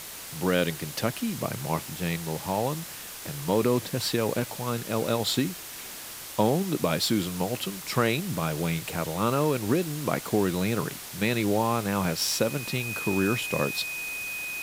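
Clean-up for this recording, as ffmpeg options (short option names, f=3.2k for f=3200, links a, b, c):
-af "bandreject=f=2.5k:w=30,afwtdn=0.011"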